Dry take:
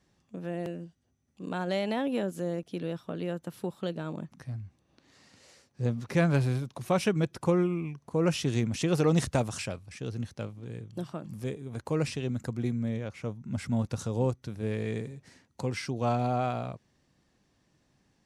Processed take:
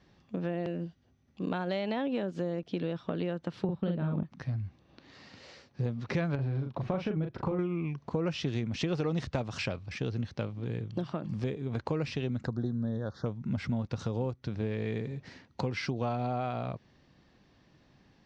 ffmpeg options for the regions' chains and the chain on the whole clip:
-filter_complex "[0:a]asettb=1/sr,asplit=3[a][b][c];[a]atrim=end=3.644[d];[b]atrim=start=3.64:end=4.23,asetpts=PTS-STARTPTS,afade=t=in:d=0.004:c=qsin,afade=t=out:st=0.586:d=0.004:c=qsin,bass=f=250:g=11,treble=f=4k:g=-14,agate=range=-33dB:threshold=-43dB:ratio=3:release=100:detection=peak,asplit=2[e][f];[f]adelay=46,volume=-3dB[g];[e][g]amix=inputs=2:normalize=0,atrim=end_sample=26019[h];[c]atrim=start=4.226[i];[d][h]acrossfade=d=0.004:c1=hsin:c2=qsin[j];[j][i]acrossfade=d=0.004:c1=qsin:c2=hsin,asettb=1/sr,asplit=3[k][l][m];[k]atrim=end=6.354[n];[l]atrim=start=6.35:end=7.59,asetpts=PTS-STARTPTS,afade=t=in:d=0.004:c=qsin,afade=t=out:st=1.236:d=0.004:c=qsin,lowpass=f=1.2k:p=1,acompressor=threshold=-26dB:ratio=6:attack=3.2:release=140:knee=1:detection=peak,asplit=2[o][p];[p]adelay=38,volume=-6dB[q];[o][q]amix=inputs=2:normalize=0,atrim=end_sample=54684[r];[m]atrim=start=7.586[s];[n][r]acrossfade=d=0.004:c1=hsin:c2=qsin[t];[t][s]acrossfade=d=0.004:c1=qsin:c2=hsin,asettb=1/sr,asplit=3[u][v][w];[u]atrim=end=12.474[x];[v]atrim=start=12.47:end=13.26,asetpts=PTS-STARTPTS,afade=t=in:d=0.004:c=qsin,afade=t=out:st=0.786:d=0.004:c=qsin,asuperstop=centerf=2500:order=12:qfactor=1.4,equalizer=f=7.9k:w=6.8:g=-12[y];[w]atrim=start=13.256[z];[x][y]acrossfade=d=0.004:c1=hsin:c2=qsin[aa];[aa][z]acrossfade=d=0.004:c1=qsin:c2=hsin,lowpass=f=4.9k:w=0.5412,lowpass=f=4.9k:w=1.3066,acompressor=threshold=-36dB:ratio=6,volume=7dB"

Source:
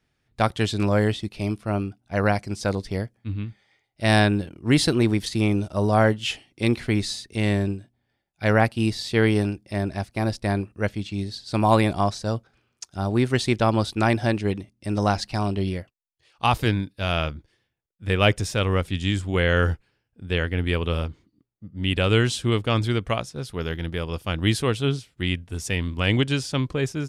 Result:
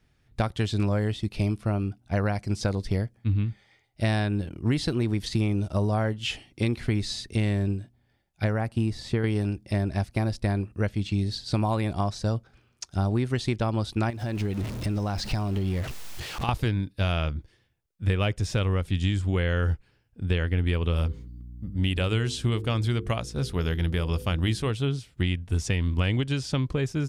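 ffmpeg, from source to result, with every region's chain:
-filter_complex "[0:a]asettb=1/sr,asplit=3[a][b][c];[a]atrim=end=8.444[d];[b]atrim=start=8.44:end=9.24,asetpts=PTS-STARTPTS,afade=t=in:d=0.004:c=qsin,afade=t=out:st=0.796:d=0.004:c=qsin,lowpass=9.9k,acrossover=split=2100|6400[e][f][g];[e]acompressor=threshold=-19dB:ratio=4[h];[f]acompressor=threshold=-47dB:ratio=4[i];[g]acompressor=threshold=-50dB:ratio=4[j];[h][i][j]amix=inputs=3:normalize=0[k];[c]atrim=start=9.236[l];[d][k]acrossfade=d=0.004:c1=hsin:c2=qsin[m];[m][l]acrossfade=d=0.004:c1=qsin:c2=hsin,asettb=1/sr,asplit=3[n][o][p];[n]atrim=end=14.104[q];[o]atrim=start=14.1:end=16.49,asetpts=PTS-STARTPTS,afade=t=in:d=0.004:c=qsin,afade=t=out:st=2.386:d=0.004:c=qsin,aeval=exprs='val(0)+0.5*0.0211*sgn(val(0))':c=same,acompressor=threshold=-30dB:ratio=4:attack=3.2:release=140:knee=1:detection=peak[r];[p]atrim=start=16.486[s];[q][r]acrossfade=d=0.004:c1=hsin:c2=qsin[t];[t][s]acrossfade=d=0.004:c1=qsin:c2=hsin,asettb=1/sr,asplit=3[u][v][w];[u]atrim=end=20.964[x];[v]atrim=start=20.96:end=24.71,asetpts=PTS-STARTPTS,afade=t=in:d=0.004:c=qsin,afade=t=out:st=3.746:d=0.004:c=qsin,highshelf=f=7.5k:g=8.5,bandreject=f=50:t=h:w=6,bandreject=f=100:t=h:w=6,bandreject=f=150:t=h:w=6,bandreject=f=200:t=h:w=6,bandreject=f=250:t=h:w=6,bandreject=f=300:t=h:w=6,bandreject=f=350:t=h:w=6,bandreject=f=400:t=h:w=6,bandreject=f=450:t=h:w=6,bandreject=f=500:t=h:w=6,aeval=exprs='val(0)+0.00355*(sin(2*PI*60*n/s)+sin(2*PI*2*60*n/s)/2+sin(2*PI*3*60*n/s)/3+sin(2*PI*4*60*n/s)/4+sin(2*PI*5*60*n/s)/5)':c=same[y];[w]atrim=start=24.706[z];[x][y]acrossfade=d=0.004:c1=hsin:c2=qsin[aa];[aa][z]acrossfade=d=0.004:c1=qsin:c2=hsin,acompressor=threshold=-28dB:ratio=5,lowshelf=f=130:g=9.5,acrossover=split=7100[ab][ac];[ac]acompressor=threshold=-50dB:ratio=4:attack=1:release=60[ad];[ab][ad]amix=inputs=2:normalize=0,volume=2.5dB"

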